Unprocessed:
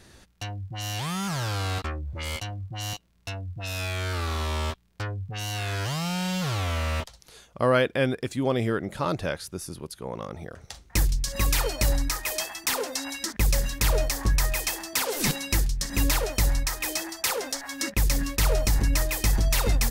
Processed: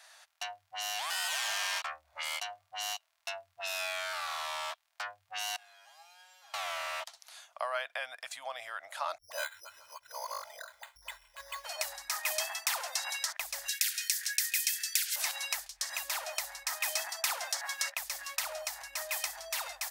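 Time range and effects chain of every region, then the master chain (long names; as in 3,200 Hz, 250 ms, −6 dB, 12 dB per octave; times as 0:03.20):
0:01.10–0:01.82: tilt shelving filter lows −7 dB, about 640 Hz + ring modulation 1,700 Hz
0:05.56–0:06.54: four-pole ladder high-pass 320 Hz, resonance 45% + tuned comb filter 820 Hz, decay 0.21 s, mix 90%
0:09.18–0:11.65: comb filter 2 ms, depth 71% + all-pass dispersion highs, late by 130 ms, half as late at 310 Hz + bad sample-rate conversion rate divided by 8×, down filtered, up hold
0:13.68–0:15.16: Butterworth high-pass 1,500 Hz 72 dB per octave + high-shelf EQ 2,400 Hz +10.5 dB
whole clip: downward compressor, threshold −27 dBFS; elliptic high-pass filter 650 Hz, stop band 40 dB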